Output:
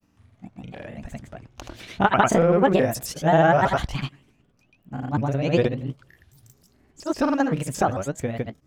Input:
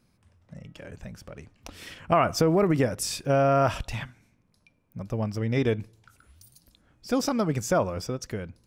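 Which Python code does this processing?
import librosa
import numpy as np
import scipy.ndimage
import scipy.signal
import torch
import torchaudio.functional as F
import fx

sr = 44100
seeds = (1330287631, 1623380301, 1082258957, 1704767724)

y = fx.pitch_ramps(x, sr, semitones=6.0, every_ms=202)
y = fx.high_shelf(y, sr, hz=5600.0, db=-8.0)
y = fx.granulator(y, sr, seeds[0], grain_ms=100.0, per_s=20.0, spray_ms=100.0, spread_st=0)
y = y * 10.0 ** (6.5 / 20.0)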